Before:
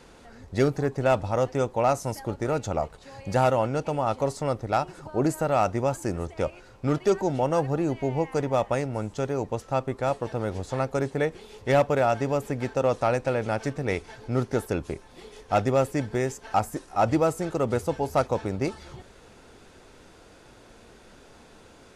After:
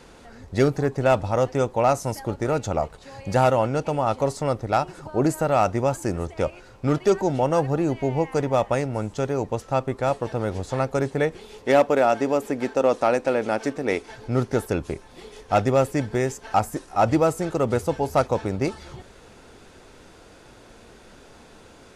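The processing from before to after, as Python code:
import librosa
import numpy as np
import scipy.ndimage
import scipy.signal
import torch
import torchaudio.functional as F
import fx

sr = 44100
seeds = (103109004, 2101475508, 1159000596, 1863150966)

y = fx.low_shelf_res(x, sr, hz=180.0, db=-9.5, q=1.5, at=(11.61, 14.1))
y = F.gain(torch.from_numpy(y), 3.0).numpy()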